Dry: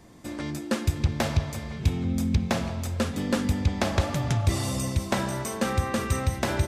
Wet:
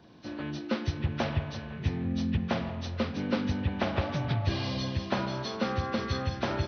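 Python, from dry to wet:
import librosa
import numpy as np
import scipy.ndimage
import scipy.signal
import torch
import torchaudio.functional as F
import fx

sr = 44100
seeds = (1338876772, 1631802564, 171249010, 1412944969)

y = fx.freq_compress(x, sr, knee_hz=1100.0, ratio=1.5)
y = scipy.signal.sosfilt(scipy.signal.butter(2, 87.0, 'highpass', fs=sr, output='sos'), y)
y = y * librosa.db_to_amplitude(-3.0)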